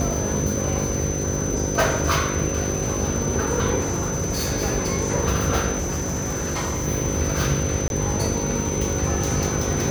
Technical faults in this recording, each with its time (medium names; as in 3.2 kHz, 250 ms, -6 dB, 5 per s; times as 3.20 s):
buzz 50 Hz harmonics 11 -28 dBFS
crackle 360 per s -28 dBFS
whine 6.1 kHz -29 dBFS
3.80–4.53 s: clipped -19.5 dBFS
5.78–6.88 s: clipped -21.5 dBFS
7.88–7.90 s: dropout 21 ms